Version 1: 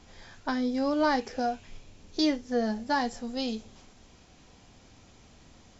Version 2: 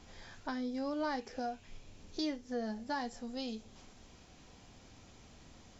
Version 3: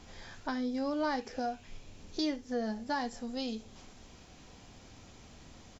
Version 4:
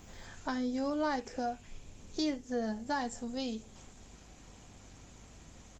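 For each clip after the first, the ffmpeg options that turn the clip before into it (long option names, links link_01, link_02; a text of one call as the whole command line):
ffmpeg -i in.wav -af "acompressor=threshold=-46dB:ratio=1.5,volume=-2dB" out.wav
ffmpeg -i in.wav -af "aecho=1:1:72:0.075,volume=3.5dB" out.wav
ffmpeg -i in.wav -af "aexciter=amount=2.2:drive=8.9:freq=6800,aeval=exprs='val(0)+0.00126*(sin(2*PI*50*n/s)+sin(2*PI*2*50*n/s)/2+sin(2*PI*3*50*n/s)/3+sin(2*PI*4*50*n/s)/4+sin(2*PI*5*50*n/s)/5)':channel_layout=same" -ar 48000 -c:a libopus -b:a 32k out.opus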